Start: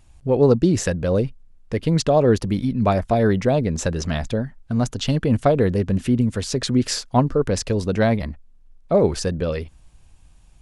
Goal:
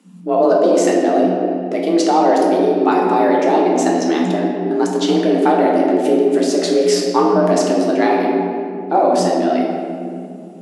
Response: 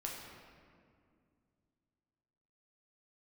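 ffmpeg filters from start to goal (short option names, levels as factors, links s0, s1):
-filter_complex "[1:a]atrim=start_sample=2205[s0];[0:a][s0]afir=irnorm=-1:irlink=0,apsyclip=3.98,afreqshift=170,volume=0.447"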